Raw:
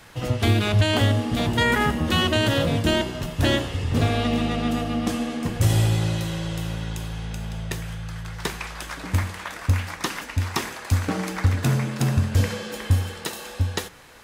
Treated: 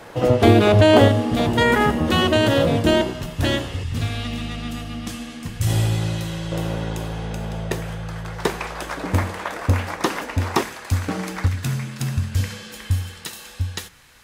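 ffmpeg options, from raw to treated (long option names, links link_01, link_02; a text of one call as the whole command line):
ffmpeg -i in.wav -af "asetnsamples=nb_out_samples=441:pad=0,asendcmd='1.08 equalizer g 6.5;3.13 equalizer g -0.5;3.83 equalizer g -11.5;5.67 equalizer g 0;6.52 equalizer g 11;10.63 equalizer g 0;11.48 equalizer g -10',equalizer=frequency=500:width_type=o:width=2.5:gain=14" out.wav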